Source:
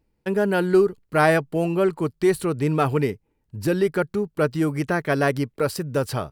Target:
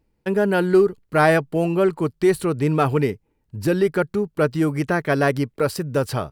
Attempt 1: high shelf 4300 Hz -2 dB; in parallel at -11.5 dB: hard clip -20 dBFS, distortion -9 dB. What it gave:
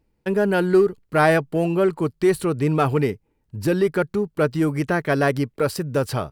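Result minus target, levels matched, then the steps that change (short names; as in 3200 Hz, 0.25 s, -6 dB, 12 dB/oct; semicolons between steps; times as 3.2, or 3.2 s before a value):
hard clip: distortion +9 dB
change: hard clip -13.5 dBFS, distortion -18 dB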